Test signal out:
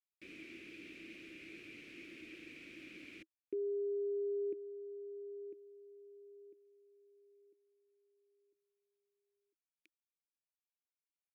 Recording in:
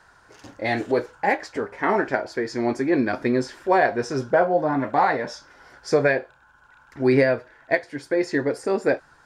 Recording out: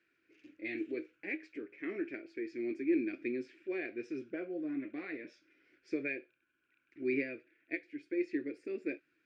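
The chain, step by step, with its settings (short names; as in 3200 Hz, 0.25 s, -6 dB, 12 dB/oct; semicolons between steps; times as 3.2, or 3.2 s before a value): double band-pass 880 Hz, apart 2.9 oct; gain -5 dB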